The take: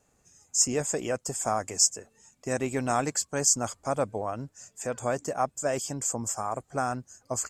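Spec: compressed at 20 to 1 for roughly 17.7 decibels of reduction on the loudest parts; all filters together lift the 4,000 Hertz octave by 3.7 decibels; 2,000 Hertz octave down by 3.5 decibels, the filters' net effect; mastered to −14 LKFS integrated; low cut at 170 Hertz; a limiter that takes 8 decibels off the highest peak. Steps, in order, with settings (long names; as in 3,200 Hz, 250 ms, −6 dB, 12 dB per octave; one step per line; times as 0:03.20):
high-pass filter 170 Hz
parametric band 2,000 Hz −6.5 dB
parametric band 4,000 Hz +7 dB
downward compressor 20 to 1, threshold −33 dBFS
level +26.5 dB
brickwall limiter −2.5 dBFS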